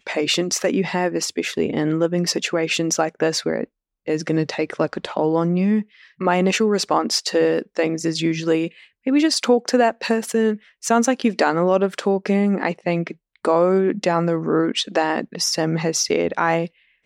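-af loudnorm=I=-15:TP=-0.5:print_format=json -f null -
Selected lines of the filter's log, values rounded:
"input_i" : "-20.6",
"input_tp" : "-5.7",
"input_lra" : "1.9",
"input_thresh" : "-30.7",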